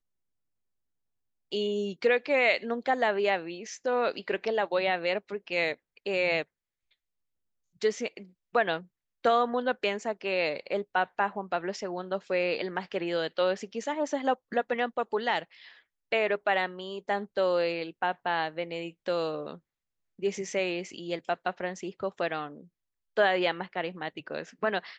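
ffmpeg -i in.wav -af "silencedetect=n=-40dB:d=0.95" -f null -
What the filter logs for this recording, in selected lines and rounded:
silence_start: 0.00
silence_end: 1.52 | silence_duration: 1.52
silence_start: 6.43
silence_end: 7.82 | silence_duration: 1.39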